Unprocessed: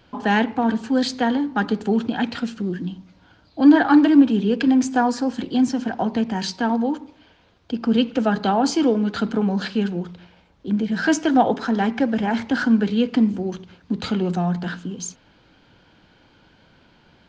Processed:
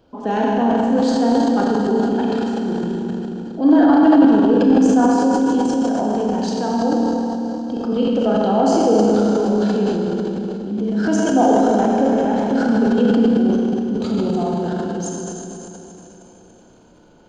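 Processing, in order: graphic EQ 125/250/500/2000/4000 Hz -4/+3/+6/-12/-5 dB; Schroeder reverb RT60 3.5 s, combs from 26 ms, DRR -4 dB; dynamic EQ 220 Hz, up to -3 dB, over -18 dBFS, Q 0.83; transient shaper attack -2 dB, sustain +8 dB; gain -2.5 dB

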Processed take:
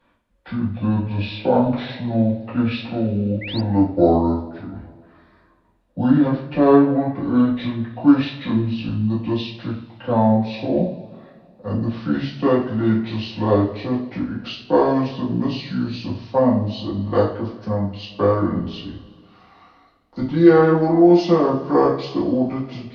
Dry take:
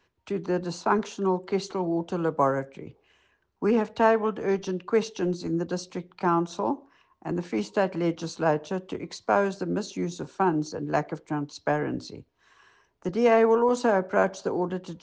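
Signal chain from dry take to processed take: speed glide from 59% -> 72%; two-slope reverb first 0.44 s, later 2.2 s, from -20 dB, DRR -7.5 dB; painted sound rise, 3.41–3.61, 1900–5000 Hz -31 dBFS; gain -1 dB

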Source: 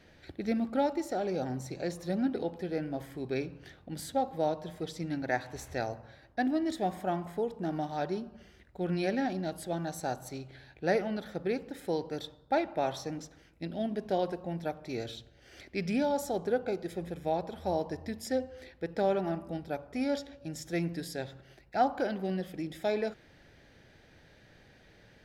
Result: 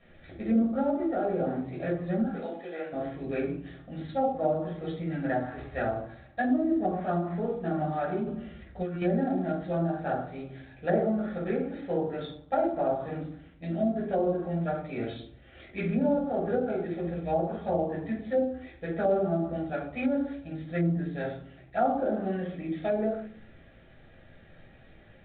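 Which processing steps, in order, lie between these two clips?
2.22–2.93 HPF 550 Hz 12 dB/oct; 19.95–20.43 high shelf 2400 Hz +6.5 dB; shoebox room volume 460 m³, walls furnished, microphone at 6.1 m; dynamic EQ 1500 Hz, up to +6 dB, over -43 dBFS, Q 2.1; 8.27–9.02 negative-ratio compressor -25 dBFS, ratio -1; treble ducked by the level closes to 770 Hz, closed at -15.5 dBFS; gain -7 dB; G.726 32 kbps 8000 Hz

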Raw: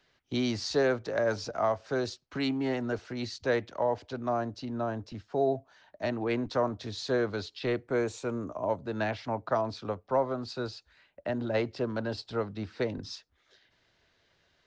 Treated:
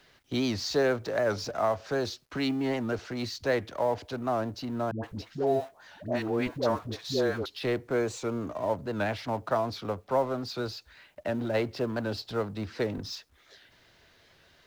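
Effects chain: G.711 law mismatch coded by mu; 4.91–7.46 dispersion highs, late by 0.124 s, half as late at 510 Hz; record warp 78 rpm, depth 100 cents

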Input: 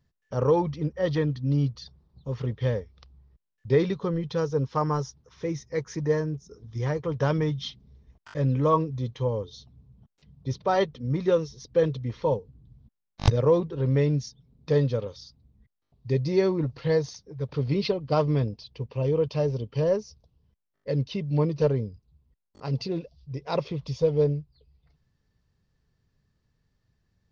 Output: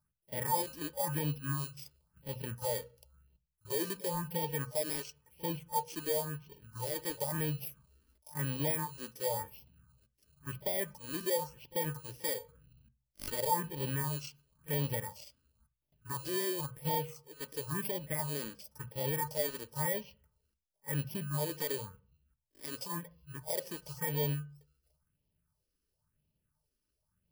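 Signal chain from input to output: FFT order left unsorted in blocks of 32 samples; low shelf 230 Hz -8 dB; limiter -18.5 dBFS, peak gain reduction 9 dB; phaser stages 4, 0.96 Hz, lowest notch 120–1400 Hz; small resonant body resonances 610/890 Hz, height 13 dB, ringing for 65 ms; pre-echo 41 ms -21 dB; on a send at -12 dB: reverb RT60 0.40 s, pre-delay 3 ms; on the sum: gain -5 dB

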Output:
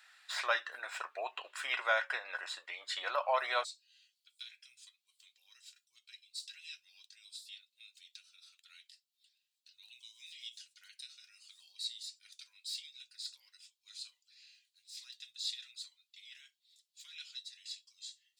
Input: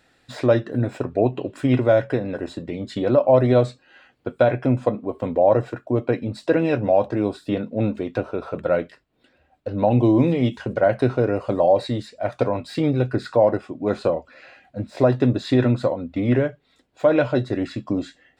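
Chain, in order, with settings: inverse Chebyshev high-pass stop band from 180 Hz, stop band 80 dB, from 3.63 s stop band from 690 Hz; gain +1 dB

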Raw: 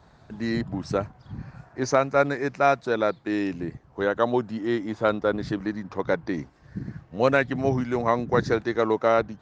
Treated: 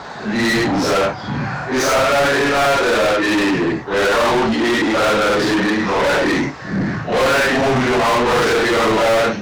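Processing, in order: phase scrambler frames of 0.2 s; overdrive pedal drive 36 dB, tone 4900 Hz, clips at -9 dBFS

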